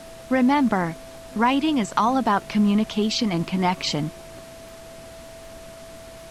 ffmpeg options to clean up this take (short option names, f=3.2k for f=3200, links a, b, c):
-af "adeclick=t=4,bandreject=f=660:w=30,afftdn=nr=26:nf=-41"